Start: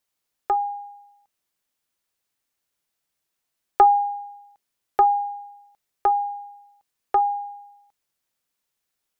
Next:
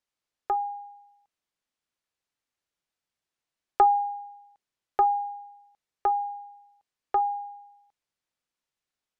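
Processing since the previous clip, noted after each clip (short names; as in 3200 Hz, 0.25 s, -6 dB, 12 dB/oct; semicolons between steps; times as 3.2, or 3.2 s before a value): air absorption 56 m; gain -4.5 dB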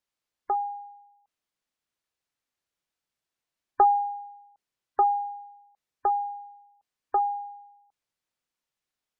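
spectral gate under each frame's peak -30 dB strong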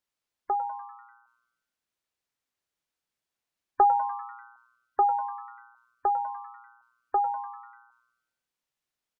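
frequency-shifting echo 98 ms, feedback 59%, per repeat +120 Hz, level -14.5 dB; gain -1 dB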